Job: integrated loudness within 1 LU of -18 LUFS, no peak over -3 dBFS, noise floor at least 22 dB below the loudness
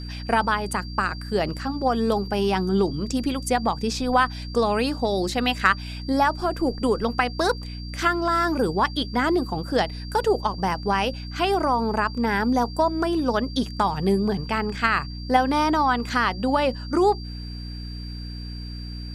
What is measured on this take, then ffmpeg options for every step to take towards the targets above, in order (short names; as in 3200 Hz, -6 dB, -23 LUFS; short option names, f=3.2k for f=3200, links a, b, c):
hum 60 Hz; harmonics up to 300 Hz; hum level -32 dBFS; steady tone 4700 Hz; tone level -41 dBFS; loudness -23.5 LUFS; peak -4.5 dBFS; loudness target -18.0 LUFS
-> -af "bandreject=f=60:t=h:w=4,bandreject=f=120:t=h:w=4,bandreject=f=180:t=h:w=4,bandreject=f=240:t=h:w=4,bandreject=f=300:t=h:w=4"
-af "bandreject=f=4.7k:w=30"
-af "volume=5.5dB,alimiter=limit=-3dB:level=0:latency=1"